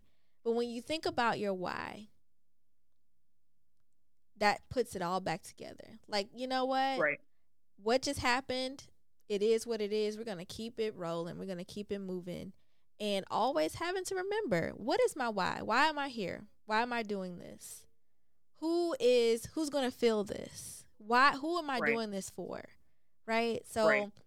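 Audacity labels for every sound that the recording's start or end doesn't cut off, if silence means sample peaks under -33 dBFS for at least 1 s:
4.410000	17.270000	sound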